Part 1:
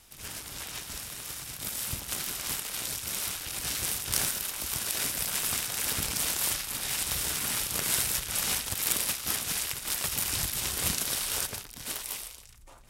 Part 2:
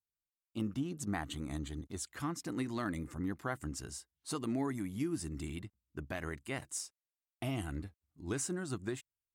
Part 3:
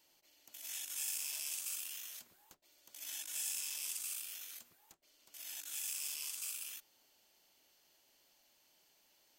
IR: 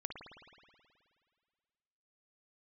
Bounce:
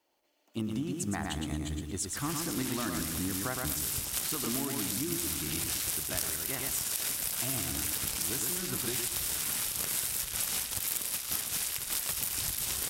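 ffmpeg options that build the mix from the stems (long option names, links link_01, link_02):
-filter_complex "[0:a]adelay=2050,volume=1.5dB[link_01];[1:a]acontrast=90,volume=-2.5dB,asplit=2[link_02][link_03];[link_03]volume=-4.5dB[link_04];[2:a]highpass=frequency=160:width=0.5412,highpass=frequency=160:width=1.3066,tiltshelf=frequency=1100:gain=8,asplit=2[link_05][link_06];[link_06]highpass=frequency=720:poles=1,volume=18dB,asoftclip=type=tanh:threshold=-31.5dB[link_07];[link_05][link_07]amix=inputs=2:normalize=0,lowpass=frequency=2000:poles=1,volume=-6dB,volume=-10.5dB,asplit=2[link_08][link_09];[link_09]volume=-7dB[link_10];[link_04][link_10]amix=inputs=2:normalize=0,aecho=0:1:114|228|342|456|570:1|0.32|0.102|0.0328|0.0105[link_11];[link_01][link_02][link_08][link_11]amix=inputs=4:normalize=0,highshelf=frequency=5900:gain=5.5,acompressor=threshold=-29dB:ratio=6"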